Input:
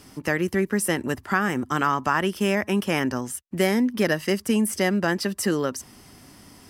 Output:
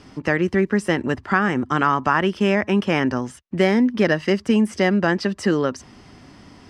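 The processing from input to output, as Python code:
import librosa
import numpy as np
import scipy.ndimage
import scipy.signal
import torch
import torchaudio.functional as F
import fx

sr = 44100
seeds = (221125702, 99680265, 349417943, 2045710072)

y = fx.air_absorb(x, sr, metres=130.0)
y = F.gain(torch.from_numpy(y), 4.5).numpy()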